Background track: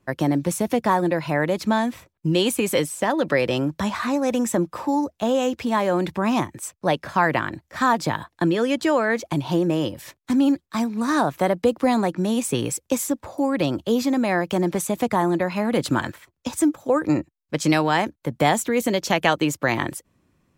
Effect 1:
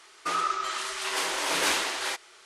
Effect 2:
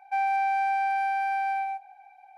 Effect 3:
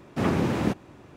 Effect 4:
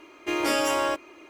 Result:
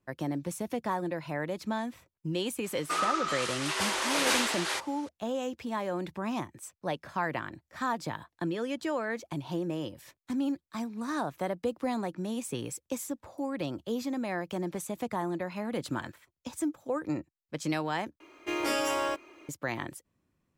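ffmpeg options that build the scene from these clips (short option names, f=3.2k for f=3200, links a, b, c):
-filter_complex "[0:a]volume=-12dB,asplit=2[a][b];[a]atrim=end=18.204[c];[4:a]atrim=end=1.29,asetpts=PTS-STARTPTS,volume=-5dB[d];[b]atrim=start=19.486[e];[1:a]atrim=end=2.45,asetpts=PTS-STARTPTS,volume=-1.5dB,afade=t=in:d=0.004:c=hsin,afade=t=out:st=2.446:d=0.004:c=hsin,adelay=2640[f];[c][d]acrossfade=d=0.004:c1=hsin:c2=hsin[g];[g][e]acrossfade=d=0.004:c1=hsin:c2=hsin[h];[h][f]amix=inputs=2:normalize=0"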